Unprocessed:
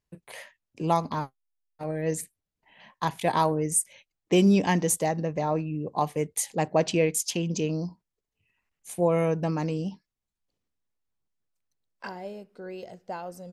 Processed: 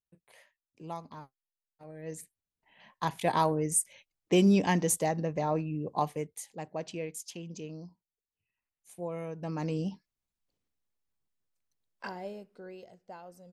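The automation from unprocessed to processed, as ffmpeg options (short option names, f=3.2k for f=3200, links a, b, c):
-af "volume=9dB,afade=t=in:st=1.91:d=1.28:silence=0.223872,afade=t=out:st=5.99:d=0.4:silence=0.281838,afade=t=in:st=9.36:d=0.43:silence=0.251189,afade=t=out:st=12.25:d=0.65:silence=0.354813"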